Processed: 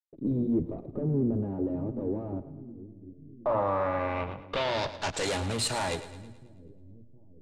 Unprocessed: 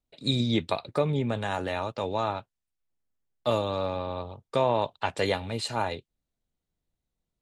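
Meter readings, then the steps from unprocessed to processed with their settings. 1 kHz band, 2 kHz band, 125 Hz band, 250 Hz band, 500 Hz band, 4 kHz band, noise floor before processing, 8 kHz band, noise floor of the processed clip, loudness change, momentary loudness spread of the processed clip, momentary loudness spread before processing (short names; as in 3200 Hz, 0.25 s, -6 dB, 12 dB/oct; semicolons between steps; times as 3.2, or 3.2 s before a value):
-3.0 dB, -1.0 dB, -1.5 dB, +2.0 dB, -2.5 dB, -3.0 dB, under -85 dBFS, +8.0 dB, -52 dBFS, -1.5 dB, 18 LU, 7 LU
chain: gate with hold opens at -52 dBFS; notches 60/120/180/240 Hz; in parallel at 0 dB: level quantiser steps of 19 dB; on the sum: tube stage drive 31 dB, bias 0.45; backlash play -45 dBFS; low-pass sweep 320 Hz -> 9100 Hz, 2.68–5.34; short-mantissa float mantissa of 8-bit; on a send: split-band echo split 360 Hz, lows 0.715 s, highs 0.108 s, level -13.5 dB; on the sum: gain +4.5 dB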